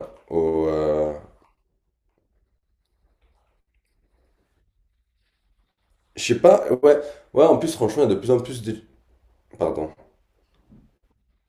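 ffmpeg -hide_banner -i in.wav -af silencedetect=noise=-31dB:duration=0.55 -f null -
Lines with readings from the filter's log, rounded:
silence_start: 1.25
silence_end: 6.17 | silence_duration: 4.92
silence_start: 8.76
silence_end: 9.61 | silence_duration: 0.85
silence_start: 9.88
silence_end: 11.48 | silence_duration: 1.60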